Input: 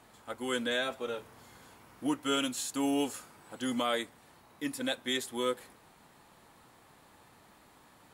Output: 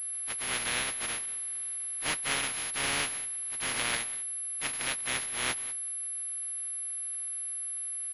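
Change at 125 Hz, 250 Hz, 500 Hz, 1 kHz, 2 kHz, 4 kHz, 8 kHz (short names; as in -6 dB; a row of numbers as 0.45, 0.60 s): +2.5, -13.5, -9.5, -0.5, +6.0, +2.0, +13.5 dB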